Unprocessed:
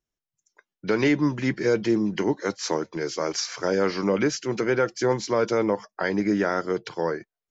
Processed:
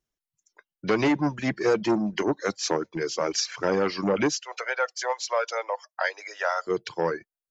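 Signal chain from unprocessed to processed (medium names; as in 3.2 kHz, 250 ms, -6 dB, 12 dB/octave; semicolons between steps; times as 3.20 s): reverb removal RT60 1.5 s; 4.33–6.67 s: steep high-pass 550 Hz 48 dB/octave; transformer saturation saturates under 700 Hz; trim +2 dB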